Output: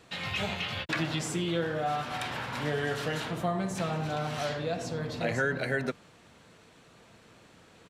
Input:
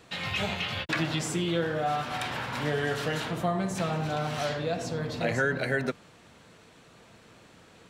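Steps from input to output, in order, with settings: resampled via 32 kHz; trim -2 dB

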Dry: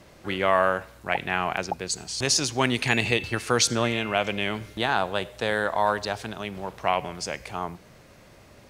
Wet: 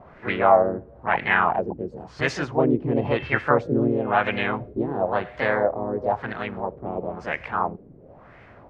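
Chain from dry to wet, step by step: harmony voices +3 st -2 dB; LFO low-pass sine 0.98 Hz 340–2000 Hz

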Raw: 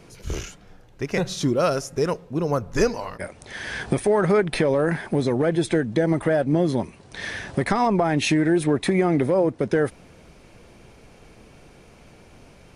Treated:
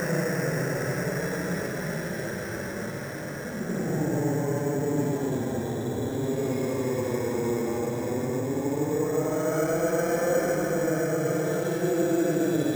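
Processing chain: spectral sustain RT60 1.33 s; Paulstretch 18×, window 0.05 s, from 4.92 s; careless resampling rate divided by 6×, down filtered, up hold; trim -8 dB

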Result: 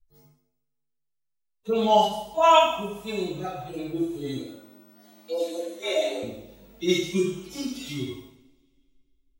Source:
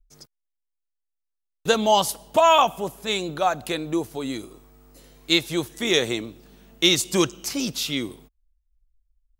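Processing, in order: harmonic-percussive separation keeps harmonic; 4.40–6.23 s: frequency shift +170 Hz; two-slope reverb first 0.67 s, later 2.3 s, from -26 dB, DRR -7 dB; trim -7.5 dB

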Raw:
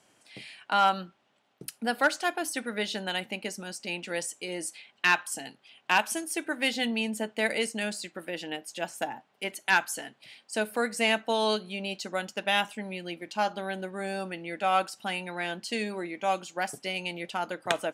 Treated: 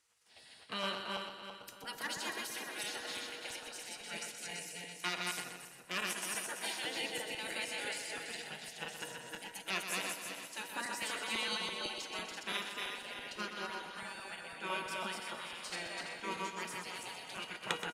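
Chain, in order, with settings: backward echo that repeats 167 ms, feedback 60%, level -2 dB; 5.40–5.91 s: peaking EQ 3.1 kHz -14 dB 2.3 oct; spectral gate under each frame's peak -10 dB weak; feedback comb 480 Hz, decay 0.42 s, mix 70%; feedback delay 125 ms, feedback 45%, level -8.5 dB; trim +2.5 dB

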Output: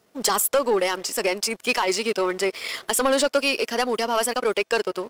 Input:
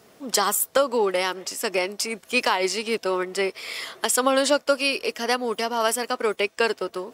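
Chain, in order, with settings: waveshaping leveller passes 2; tempo 1.4×; trim -5 dB

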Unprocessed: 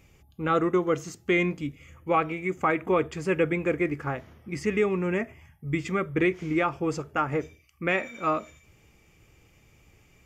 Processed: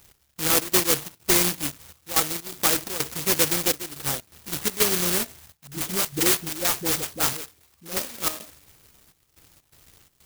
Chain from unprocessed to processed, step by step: careless resampling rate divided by 6×, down none, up zero stuff; trance gate "x..xx.xxx.xxxxx" 125 bpm -12 dB; 5.67–7.98 s: phase dispersion highs, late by 46 ms, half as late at 550 Hz; sampling jitter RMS 0.11 ms; trim -3 dB

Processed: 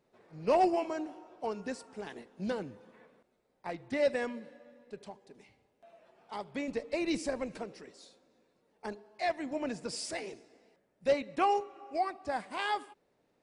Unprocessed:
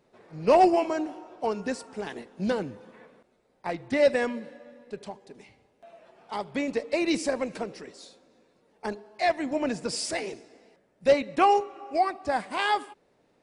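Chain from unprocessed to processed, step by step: 6.68–7.58 s: bass shelf 110 Hz +11.5 dB; trim -7.5 dB

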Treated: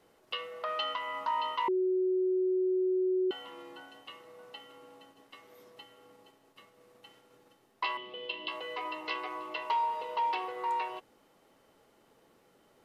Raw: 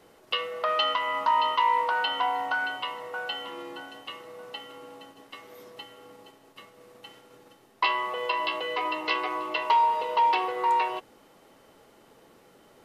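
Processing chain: 1.68–3.31 s: bleep 371 Hz -17 dBFS; 7.97–8.48 s: FFT filter 120 Hz 0 dB, 280 Hz +7 dB, 1 kHz -14 dB, 1.9 kHz -10 dB, 3.2 kHz +8 dB, 7.1 kHz -17 dB; trim -8.5 dB

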